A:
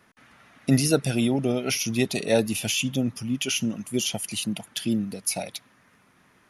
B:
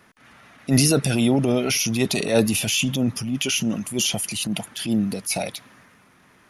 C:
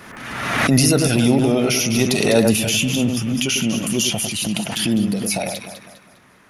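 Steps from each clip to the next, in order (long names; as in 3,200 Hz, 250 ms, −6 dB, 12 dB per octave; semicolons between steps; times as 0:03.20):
transient designer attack −9 dB, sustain +4 dB; level +5 dB
delay that swaps between a low-pass and a high-pass 101 ms, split 2,300 Hz, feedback 61%, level −5 dB; background raised ahead of every attack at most 40 dB per second; level +2 dB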